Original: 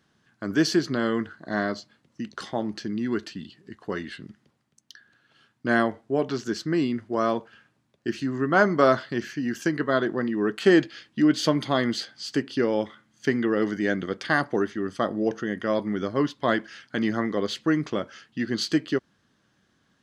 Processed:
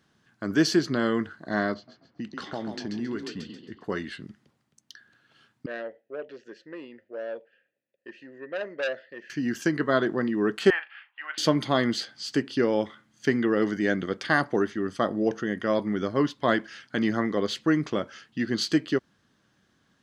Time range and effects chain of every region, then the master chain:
0:01.74–0:03.84: low-pass that shuts in the quiet parts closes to 1,700 Hz, open at −25 dBFS + downward compressor 2.5 to 1, threshold −30 dBFS + echo with shifted repeats 135 ms, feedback 38%, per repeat +31 Hz, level −7 dB
0:05.66–0:09.30: formant filter e + saturating transformer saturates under 1,900 Hz
0:10.70–0:11.38: one scale factor per block 7 bits + elliptic band-pass filter 820–2,700 Hz, stop band 60 dB + double-tracking delay 38 ms −12 dB
whole clip: no processing

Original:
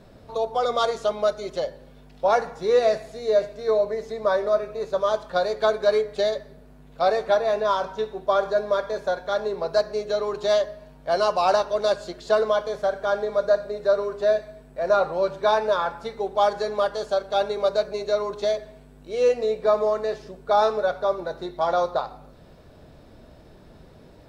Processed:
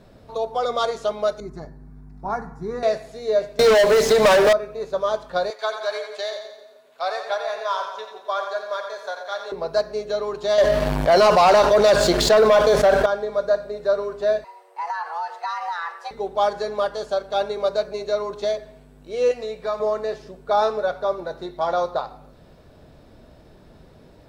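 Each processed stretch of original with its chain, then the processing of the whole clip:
0:01.40–0:02.83: tilt shelving filter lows +8.5 dB, about 800 Hz + phaser with its sweep stopped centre 1,300 Hz, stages 4
0:03.59–0:04.53: spectral tilt +2 dB per octave + leveller curve on the samples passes 5 + multiband upward and downward compressor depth 100%
0:05.50–0:09.52: high-pass filter 840 Hz + echo with a time of its own for lows and highs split 710 Hz, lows 131 ms, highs 87 ms, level −7 dB
0:10.58–0:13.06: leveller curve on the samples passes 2 + envelope flattener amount 70%
0:14.44–0:16.11: low-shelf EQ 140 Hz −12 dB + downward compressor 12 to 1, threshold −23 dBFS + frequency shifter +320 Hz
0:19.31–0:19.80: parametric band 380 Hz −9 dB 2.4 octaves + multiband upward and downward compressor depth 40%
whole clip: no processing

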